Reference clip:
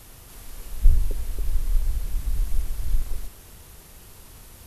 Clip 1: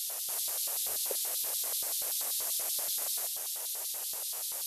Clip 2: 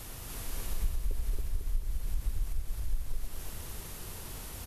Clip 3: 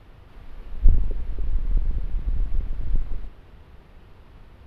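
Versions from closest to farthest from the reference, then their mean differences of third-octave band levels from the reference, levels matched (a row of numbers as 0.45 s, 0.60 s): 2, 3, 1; 5.0 dB, 9.5 dB, 13.5 dB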